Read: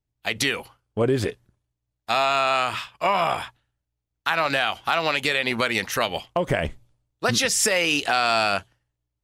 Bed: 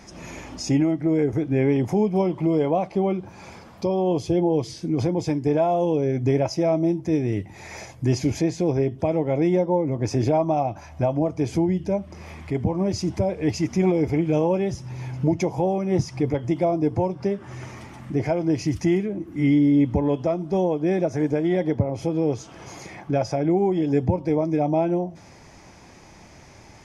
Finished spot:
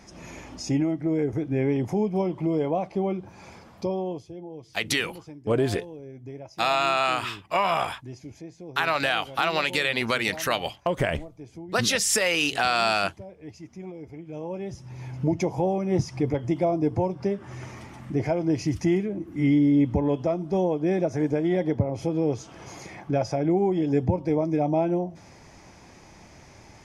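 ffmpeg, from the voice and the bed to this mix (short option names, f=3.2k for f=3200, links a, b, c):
-filter_complex "[0:a]adelay=4500,volume=-2dB[a];[1:a]volume=13dB,afade=t=out:st=3.88:d=0.38:silence=0.177828,afade=t=in:st=14.26:d=1.19:silence=0.141254[b];[a][b]amix=inputs=2:normalize=0"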